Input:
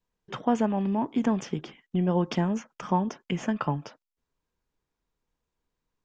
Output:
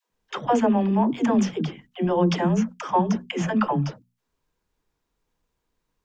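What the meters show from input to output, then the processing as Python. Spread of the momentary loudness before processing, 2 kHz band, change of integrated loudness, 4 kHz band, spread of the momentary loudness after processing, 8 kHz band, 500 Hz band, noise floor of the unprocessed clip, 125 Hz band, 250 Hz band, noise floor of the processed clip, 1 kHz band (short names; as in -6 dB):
9 LU, +6.0 dB, +5.0 dB, +6.0 dB, 10 LU, n/a, +6.0 dB, under -85 dBFS, +4.0 dB, +5.0 dB, -79 dBFS, +6.0 dB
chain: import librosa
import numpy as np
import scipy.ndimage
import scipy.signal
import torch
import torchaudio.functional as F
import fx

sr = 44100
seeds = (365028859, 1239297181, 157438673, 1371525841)

y = fx.hum_notches(x, sr, base_hz=60, count=4)
y = fx.dispersion(y, sr, late='lows', ms=115.0, hz=300.0)
y = y * librosa.db_to_amplitude(6.0)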